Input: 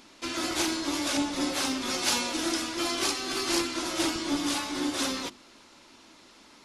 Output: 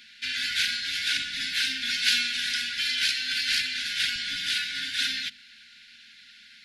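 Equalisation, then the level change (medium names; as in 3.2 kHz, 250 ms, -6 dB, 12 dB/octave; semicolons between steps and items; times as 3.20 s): brick-wall FIR band-stop 260–1400 Hz; high-order bell 2.1 kHz +15 dB 2.6 oct; treble shelf 10 kHz +7 dB; -8.0 dB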